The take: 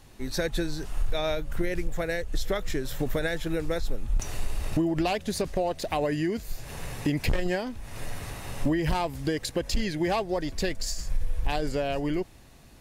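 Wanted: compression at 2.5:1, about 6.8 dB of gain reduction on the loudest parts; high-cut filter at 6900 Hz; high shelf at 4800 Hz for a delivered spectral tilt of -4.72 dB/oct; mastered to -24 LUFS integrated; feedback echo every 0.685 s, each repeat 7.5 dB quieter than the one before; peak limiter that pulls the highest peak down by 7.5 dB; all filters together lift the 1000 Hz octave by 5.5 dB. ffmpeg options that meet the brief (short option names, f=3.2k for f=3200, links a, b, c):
-af "lowpass=6.9k,equalizer=f=1k:t=o:g=7.5,highshelf=f=4.8k:g=5.5,acompressor=threshold=-30dB:ratio=2.5,alimiter=level_in=0.5dB:limit=-24dB:level=0:latency=1,volume=-0.5dB,aecho=1:1:685|1370|2055|2740|3425:0.422|0.177|0.0744|0.0312|0.0131,volume=11dB"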